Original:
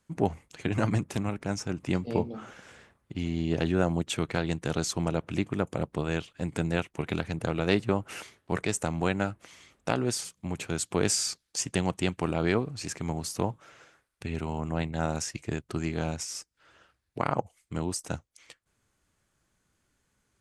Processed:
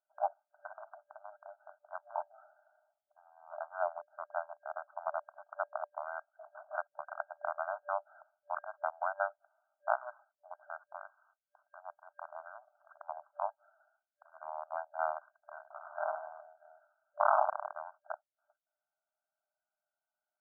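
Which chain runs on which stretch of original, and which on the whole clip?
0.76–1.92 s: high-pass 440 Hz 24 dB/octave + compression 10:1, threshold -35 dBFS
2.44–4.88 s: low-pass 1.1 kHz 6 dB/octave + tilt EQ -1.5 dB/octave + hum notches 50/100/150/200/250/300/350 Hz
6.33–6.78 s: companding laws mixed up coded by mu + LPC vocoder at 8 kHz whisper
10.93–12.72 s: tilt shelf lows -8 dB, about 1.4 kHz + compression 3:1, threshold -32 dBFS
15.55–17.73 s: high-pass 47 Hz + reverse bouncing-ball echo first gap 20 ms, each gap 1.5×, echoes 7, each echo -2 dB
whole clip: local Wiener filter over 41 samples; FFT band-pass 590–1600 Hz; trim +1 dB

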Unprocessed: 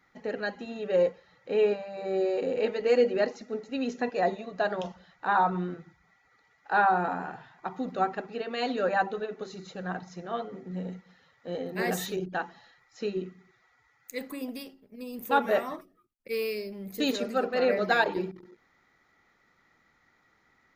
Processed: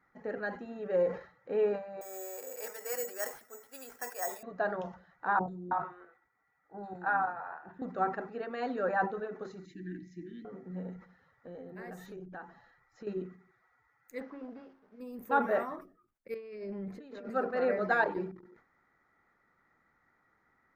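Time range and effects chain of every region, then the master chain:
2.01–4.43 s: Bessel high-pass 1.1 kHz + treble shelf 4.4 kHz -6 dB + careless resampling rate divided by 6×, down none, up zero stuff
5.39–7.82 s: level held to a coarse grid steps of 12 dB + doubling 20 ms -11 dB + three bands offset in time lows, highs, mids 90/320 ms, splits 500/4600 Hz
9.65–10.45 s: Chebyshev band-stop 370–1800 Hz, order 5 + peaking EQ 310 Hz +14 dB 0.25 oct
10.96–13.07 s: bass shelf 91 Hz +11 dB + compression 3:1, threshold -40 dBFS
14.20–15.00 s: one-bit delta coder 32 kbps, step -54 dBFS + low-pass 2.5 kHz 6 dB/octave + bass shelf 180 Hz -11.5 dB
16.34–17.30 s: low-pass 4.1 kHz + compressor with a negative ratio -39 dBFS
whole clip: resonant high shelf 2.2 kHz -9.5 dB, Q 1.5; decay stretcher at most 140 dB/s; trim -5 dB

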